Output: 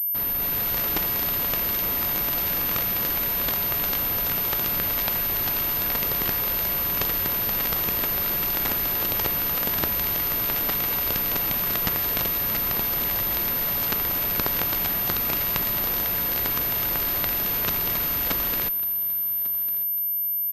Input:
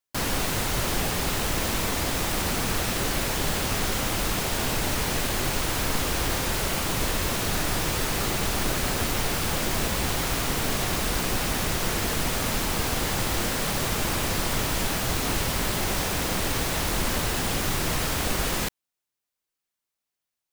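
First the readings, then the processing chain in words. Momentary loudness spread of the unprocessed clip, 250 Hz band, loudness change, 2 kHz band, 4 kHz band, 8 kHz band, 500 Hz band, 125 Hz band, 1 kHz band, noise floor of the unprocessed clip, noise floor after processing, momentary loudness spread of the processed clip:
0 LU, -5.0 dB, +3.5 dB, -2.5 dB, -3.0 dB, -8.5 dB, -4.0 dB, -6.5 dB, -3.5 dB, under -85 dBFS, -26 dBFS, 0 LU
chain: level rider gain up to 8.5 dB; Chebyshev shaper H 2 -14 dB, 3 -7 dB, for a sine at -4 dBFS; on a send: feedback delay 1148 ms, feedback 31%, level -19.5 dB; on the sum: Schroeder reverb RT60 3.5 s, combs from 33 ms, DRR 19.5 dB; class-D stage that switches slowly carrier 13 kHz

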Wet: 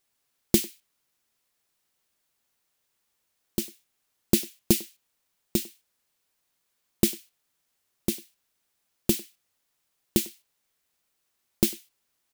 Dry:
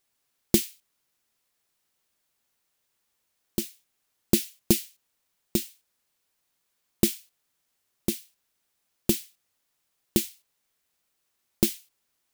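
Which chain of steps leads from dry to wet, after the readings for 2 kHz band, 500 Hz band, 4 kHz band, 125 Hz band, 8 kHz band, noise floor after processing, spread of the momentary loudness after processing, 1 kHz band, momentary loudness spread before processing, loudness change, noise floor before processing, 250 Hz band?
0.0 dB, 0.0 dB, 0.0 dB, 0.0 dB, 0.0 dB, -77 dBFS, 13 LU, 0.0 dB, 14 LU, 0.0 dB, -77 dBFS, 0.0 dB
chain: speakerphone echo 100 ms, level -20 dB

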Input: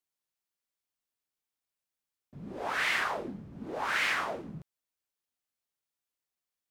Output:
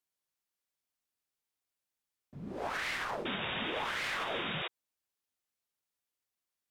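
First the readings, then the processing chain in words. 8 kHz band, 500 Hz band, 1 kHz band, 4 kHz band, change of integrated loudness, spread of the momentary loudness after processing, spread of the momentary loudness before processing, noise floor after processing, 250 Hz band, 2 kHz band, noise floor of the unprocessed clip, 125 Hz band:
-5.0 dB, -0.5 dB, -3.0 dB, +0.5 dB, -4.0 dB, 9 LU, 18 LU, under -85 dBFS, -0.5 dB, -5.0 dB, under -85 dBFS, 0.0 dB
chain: Chebyshev shaper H 4 -16 dB, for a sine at -17 dBFS; painted sound noise, 3.25–4.68 s, 340–3800 Hz -37 dBFS; peak limiter -26 dBFS, peak gain reduction 9.5 dB

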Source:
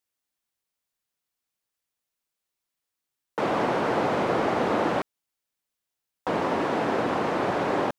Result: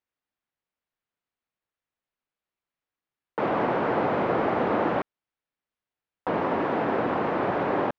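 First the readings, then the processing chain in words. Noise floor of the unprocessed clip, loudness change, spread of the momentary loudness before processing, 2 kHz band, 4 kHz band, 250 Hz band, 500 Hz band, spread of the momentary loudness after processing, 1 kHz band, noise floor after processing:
-85 dBFS, 0.0 dB, 6 LU, -1.0 dB, -6.5 dB, 0.0 dB, 0.0 dB, 6 LU, 0.0 dB, under -85 dBFS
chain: low-pass 2.5 kHz 12 dB/octave

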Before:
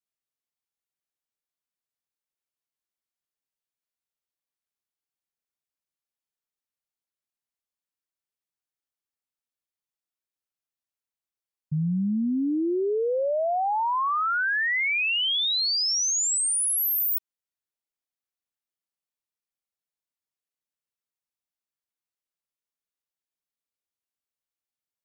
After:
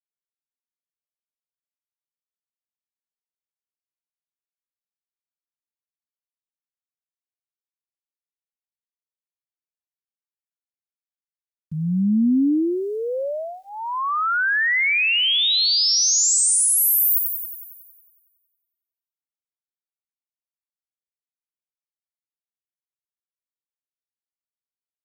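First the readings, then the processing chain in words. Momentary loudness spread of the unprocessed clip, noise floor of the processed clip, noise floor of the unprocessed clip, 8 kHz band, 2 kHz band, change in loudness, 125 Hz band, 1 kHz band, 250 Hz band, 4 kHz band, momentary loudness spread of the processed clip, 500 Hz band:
4 LU, under -85 dBFS, under -85 dBFS, +7.0 dB, +5.0 dB, +6.0 dB, +2.5 dB, -0.5 dB, +6.0 dB, +6.0 dB, 15 LU, -0.5 dB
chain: peaking EQ 410 Hz -12 dB 0.76 oct; small samples zeroed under -56 dBFS; tilt shelf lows +3.5 dB, about 1.4 kHz; static phaser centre 320 Hz, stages 4; on a send: feedback echo behind a high-pass 92 ms, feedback 65%, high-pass 4.2 kHz, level -5 dB; on the sum: trim +8.5 dB

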